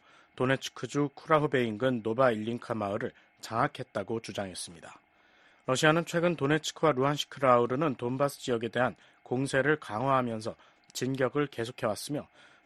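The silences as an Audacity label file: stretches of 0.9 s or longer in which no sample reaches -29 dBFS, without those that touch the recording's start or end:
4.610000	5.680000	silence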